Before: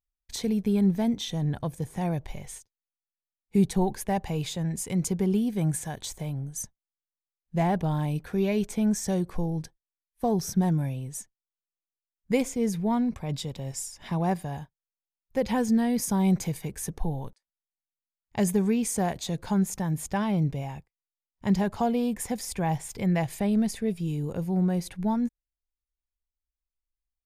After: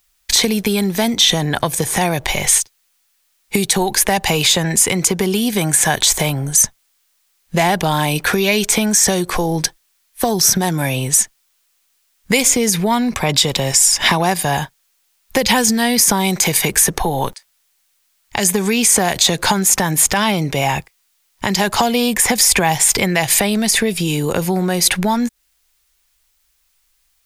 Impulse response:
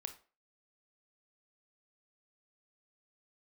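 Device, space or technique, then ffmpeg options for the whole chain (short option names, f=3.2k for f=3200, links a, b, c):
mastering chain: -filter_complex "[0:a]equalizer=f=360:t=o:w=0.22:g=3.5,acrossover=split=230|2800[a][b][c];[a]acompressor=threshold=-36dB:ratio=4[d];[b]acompressor=threshold=-32dB:ratio=4[e];[c]acompressor=threshold=-38dB:ratio=4[f];[d][e][f]amix=inputs=3:normalize=0,acompressor=threshold=-38dB:ratio=2.5,tiltshelf=f=690:g=-8,alimiter=level_in=26.5dB:limit=-1dB:release=50:level=0:latency=1,volume=-1dB"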